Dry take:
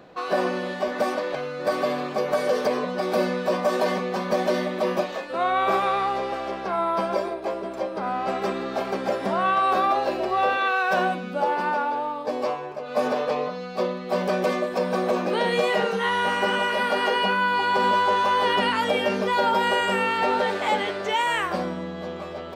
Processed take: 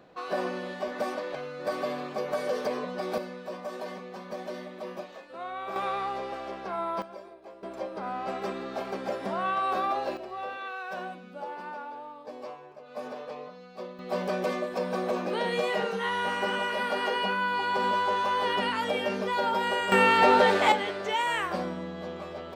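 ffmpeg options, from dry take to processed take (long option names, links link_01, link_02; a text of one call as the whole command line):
ffmpeg -i in.wav -af "asetnsamples=nb_out_samples=441:pad=0,asendcmd='3.18 volume volume -14.5dB;5.76 volume volume -7.5dB;7.02 volume volume -19dB;7.63 volume volume -7dB;10.17 volume volume -14.5dB;13.99 volume volume -6dB;19.92 volume volume 3dB;20.72 volume volume -4.5dB',volume=-7dB" out.wav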